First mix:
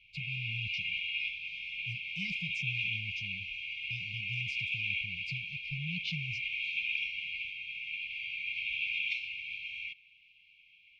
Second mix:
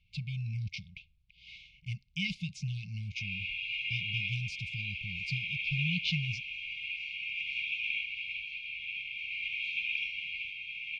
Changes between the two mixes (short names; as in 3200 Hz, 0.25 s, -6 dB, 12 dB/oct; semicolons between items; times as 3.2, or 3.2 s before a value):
speech +6.0 dB; background: entry +3.00 s